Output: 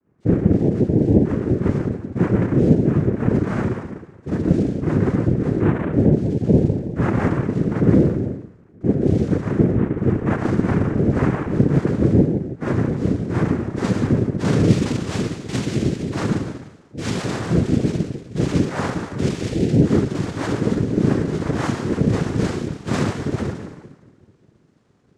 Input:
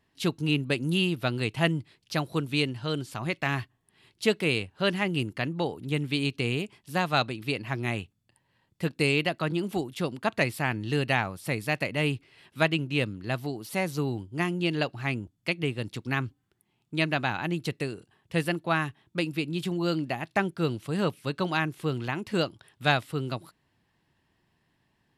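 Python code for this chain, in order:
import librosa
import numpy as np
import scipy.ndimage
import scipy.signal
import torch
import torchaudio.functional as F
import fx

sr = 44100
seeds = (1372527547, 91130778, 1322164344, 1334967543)

p1 = scipy.signal.sosfilt(scipy.signal.ellip(3, 1.0, 40, [200.0, 940.0], 'bandstop', fs=sr, output='sos'), x)
p2 = p1 + fx.echo_wet_lowpass(p1, sr, ms=202, feedback_pct=53, hz=420.0, wet_db=-18.5, dry=0)
p3 = fx.filter_sweep_lowpass(p2, sr, from_hz=770.0, to_hz=5600.0, start_s=12.73, end_s=16.0, q=2.0)
p4 = fx.rider(p3, sr, range_db=4, speed_s=0.5)
p5 = fx.rev_spring(p4, sr, rt60_s=1.2, pass_ms=(34, 52), chirp_ms=25, drr_db=-9.5)
p6 = fx.noise_vocoder(p5, sr, seeds[0], bands=3)
p7 = fx.tilt_eq(p6, sr, slope=-3.5)
y = p7 * librosa.db_to_amplitude(-3.0)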